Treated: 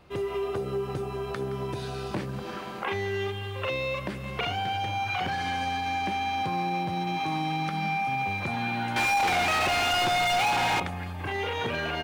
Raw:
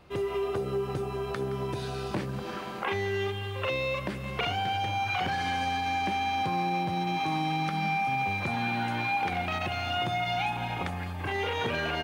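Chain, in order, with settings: 8.96–10.80 s: overdrive pedal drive 32 dB, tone 3.8 kHz, clips at -18.5 dBFS

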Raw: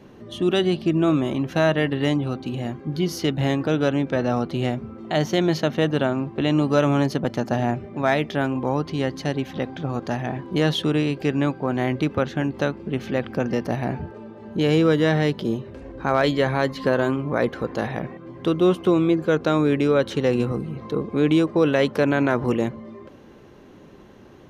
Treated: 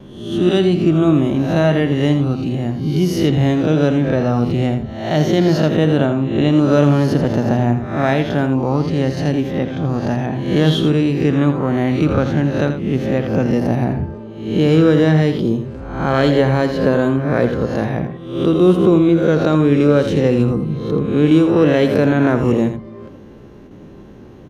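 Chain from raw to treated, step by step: reverse spectral sustain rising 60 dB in 0.68 s; bass shelf 420 Hz +10 dB; gate with hold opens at -31 dBFS; delay 83 ms -9 dB; trim -1 dB

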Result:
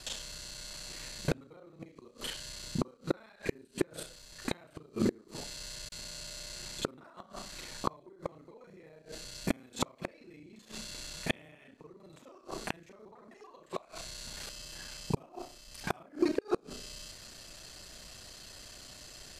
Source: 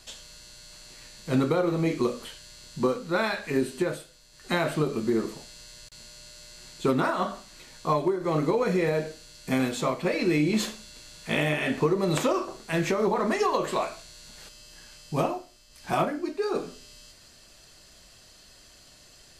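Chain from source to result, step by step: time reversed locally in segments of 32 ms; inverted gate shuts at -19 dBFS, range -33 dB; trim +4 dB

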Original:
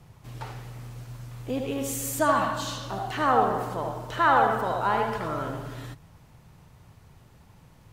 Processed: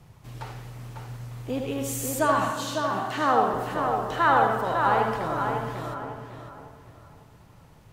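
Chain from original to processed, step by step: 2.51–3.54 s: high-pass 130 Hz 24 dB/octave; tape echo 551 ms, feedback 35%, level -4 dB, low-pass 2.6 kHz

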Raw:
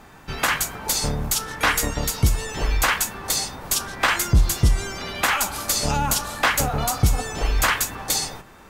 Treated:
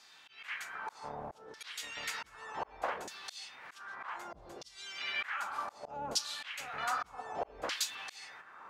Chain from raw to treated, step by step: slow attack 590 ms; LFO band-pass saw down 0.65 Hz 450–5000 Hz; trim +3 dB

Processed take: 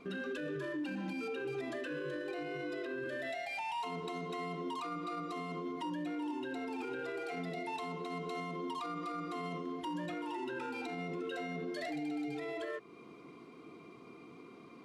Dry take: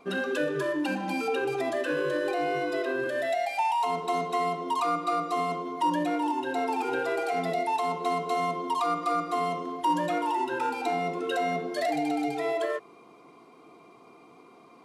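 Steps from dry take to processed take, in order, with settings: low-pass 2.4 kHz 6 dB/octave; peaking EQ 780 Hz -13.5 dB 1.3 oct; in parallel at +2 dB: compression, threshold -48 dBFS, peak gain reduction 17.5 dB; on the sum: peak limiter -30 dBFS, peak gain reduction 9.5 dB; trim -2 dB

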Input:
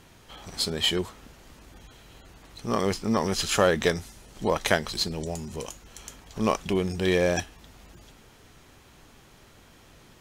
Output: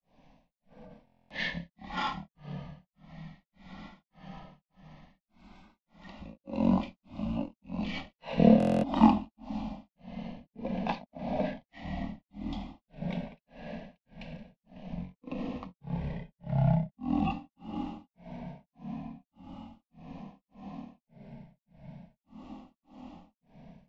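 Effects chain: low-pass 3.5 kHz 6 dB/octave; peaking EQ 73 Hz -12 dB 2.6 oct; static phaser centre 910 Hz, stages 6; echo that smears into a reverb 905 ms, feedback 61%, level -15 dB; on a send at -6 dB: reverberation RT60 2.1 s, pre-delay 6 ms; on the sum: granulator 228 ms, grains 4 per s, spray 11 ms, pitch spread up and down by 3 st; rotary cabinet horn 1 Hz; speed mistake 78 rpm record played at 33 rpm; buffer glitch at 1.05/8.58 s, samples 1024, times 10; trim +5.5 dB; AAC 96 kbps 24 kHz

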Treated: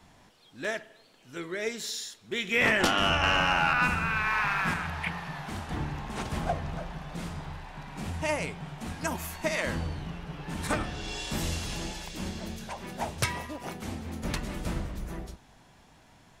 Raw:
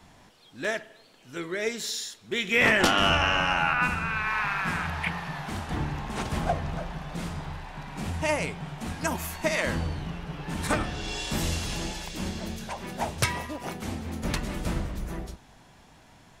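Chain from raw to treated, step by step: 3.23–4.74 s: waveshaping leveller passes 1; trim -3 dB

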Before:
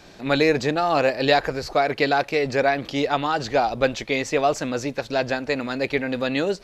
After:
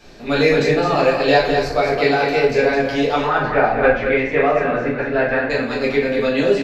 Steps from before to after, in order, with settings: 3.18–5.50 s: resonant low-pass 1.8 kHz, resonance Q 2.5; delay 212 ms -6.5 dB; simulated room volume 84 m³, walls mixed, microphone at 1.6 m; trim -4.5 dB

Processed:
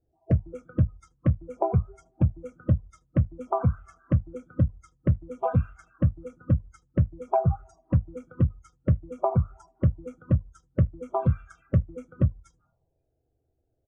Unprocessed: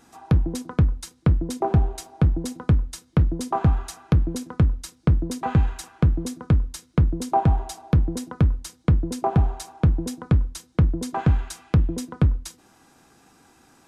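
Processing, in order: coarse spectral quantiser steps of 30 dB; wavefolder -11.5 dBFS; touch-sensitive phaser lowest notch 170 Hz, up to 4.2 kHz, full sweep at -22 dBFS; on a send: feedback delay 76 ms, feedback 32%, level -19 dB; on the sum: compression 6:1, threshold -34 dBFS, peak gain reduction 18 dB; resonant low shelf 190 Hz +7 dB, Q 1.5; hum notches 50/100/150/200/250 Hz; spectral noise reduction 22 dB; level-controlled noise filter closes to 360 Hz, open at -28 dBFS; graphic EQ with 31 bands 630 Hz +10 dB, 4 kHz -7 dB, 6.3 kHz +4 dB; trim +8.5 dB

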